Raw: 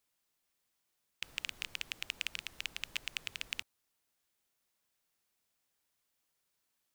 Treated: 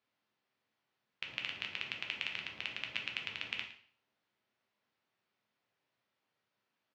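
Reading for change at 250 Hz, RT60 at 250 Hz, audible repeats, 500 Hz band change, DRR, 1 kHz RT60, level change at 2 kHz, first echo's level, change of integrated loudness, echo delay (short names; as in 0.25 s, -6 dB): +5.5 dB, 0.50 s, 1, +5.0 dB, 1.5 dB, 0.55 s, +2.5 dB, -15.0 dB, +1.0 dB, 0.112 s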